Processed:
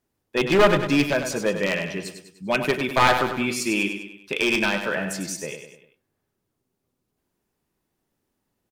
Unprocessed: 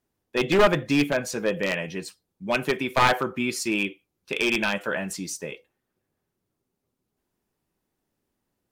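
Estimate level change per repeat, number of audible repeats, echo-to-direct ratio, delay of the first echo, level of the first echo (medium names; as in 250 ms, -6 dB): -6.5 dB, 4, -7.0 dB, 99 ms, -8.0 dB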